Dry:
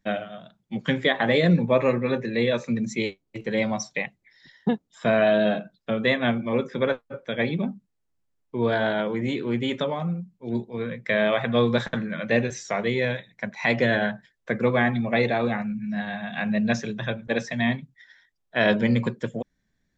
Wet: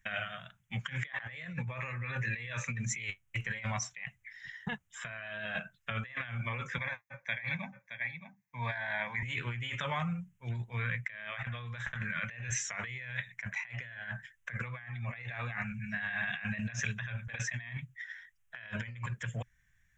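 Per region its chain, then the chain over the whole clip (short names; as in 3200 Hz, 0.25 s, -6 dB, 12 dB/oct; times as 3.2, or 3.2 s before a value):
6.78–9.23 HPF 190 Hz + fixed phaser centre 2000 Hz, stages 8 + echo 0.621 s -10.5 dB
whole clip: EQ curve 120 Hz 0 dB, 240 Hz -22 dB, 370 Hz -25 dB, 1700 Hz +4 dB, 2900 Hz +3 dB, 4400 Hz -16 dB, 6300 Hz +1 dB; negative-ratio compressor -37 dBFS, ratio -1; gain -2 dB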